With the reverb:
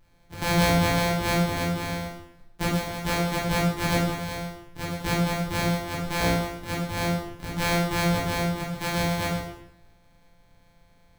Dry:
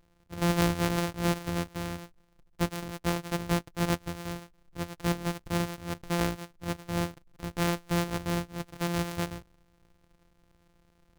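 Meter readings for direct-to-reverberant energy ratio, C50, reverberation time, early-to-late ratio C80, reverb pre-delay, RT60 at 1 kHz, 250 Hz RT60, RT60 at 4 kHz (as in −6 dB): −6.0 dB, 2.0 dB, 0.80 s, 5.0 dB, 7 ms, 0.80 s, 0.85 s, 0.70 s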